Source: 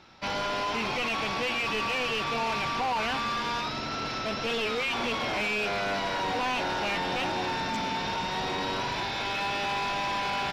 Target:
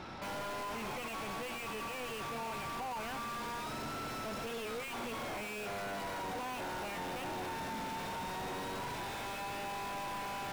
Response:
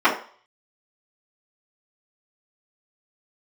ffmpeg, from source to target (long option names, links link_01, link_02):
-filter_complex "[0:a]aeval=exprs='(tanh(316*val(0)+0.05)-tanh(0.05))/316':channel_layout=same,asplit=2[link_01][link_02];[link_02]adynamicsmooth=sensitivity=7:basefreq=2200,volume=2dB[link_03];[link_01][link_03]amix=inputs=2:normalize=0,volume=5.5dB"